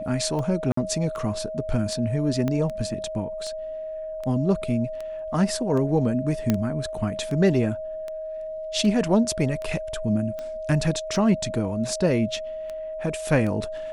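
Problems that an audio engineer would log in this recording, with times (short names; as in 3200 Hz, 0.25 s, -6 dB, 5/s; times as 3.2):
tick 78 rpm -21 dBFS
tone 630 Hz -30 dBFS
0.72–0.77 gap 54 ms
2.48 pop -14 dBFS
6.5 pop -8 dBFS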